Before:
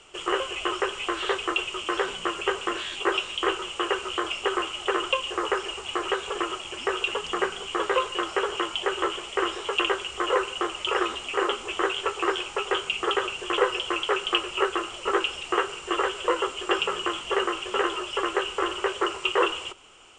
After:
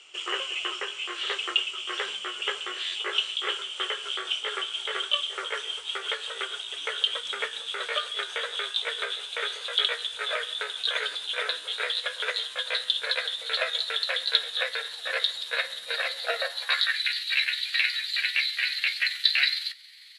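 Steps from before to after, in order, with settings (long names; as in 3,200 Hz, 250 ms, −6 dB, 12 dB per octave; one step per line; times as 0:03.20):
pitch glide at a constant tempo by +6.5 semitones starting unshifted
meter weighting curve D
high-pass filter sweep 63 Hz → 2,300 Hz, 0:15.54–0:17.03
low-shelf EQ 240 Hz −10 dB
level −8 dB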